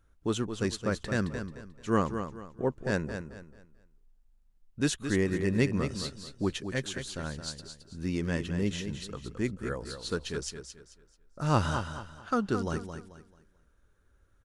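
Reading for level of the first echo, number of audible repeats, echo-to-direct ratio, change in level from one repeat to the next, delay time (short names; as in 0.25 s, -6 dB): -8.5 dB, 3, -8.0 dB, -10.0 dB, 0.219 s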